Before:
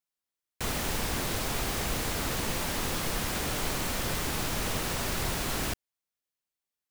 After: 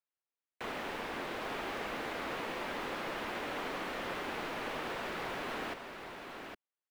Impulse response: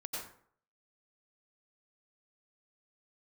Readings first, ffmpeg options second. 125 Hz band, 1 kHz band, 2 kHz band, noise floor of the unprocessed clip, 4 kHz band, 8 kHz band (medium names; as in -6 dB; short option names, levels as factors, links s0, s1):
-17.5 dB, -3.0 dB, -3.5 dB, under -85 dBFS, -10.0 dB, -21.5 dB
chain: -filter_complex "[0:a]acrossover=split=240 3200:gain=0.1 1 0.0891[s0][s1][s2];[s0][s1][s2]amix=inputs=3:normalize=0,aecho=1:1:809:0.473,volume=0.668"